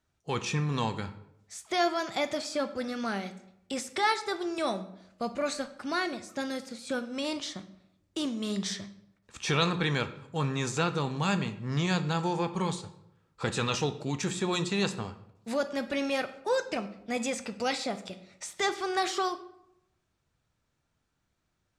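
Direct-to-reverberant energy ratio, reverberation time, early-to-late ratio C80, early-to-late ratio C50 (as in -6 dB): 9.5 dB, 0.80 s, 16.0 dB, 13.5 dB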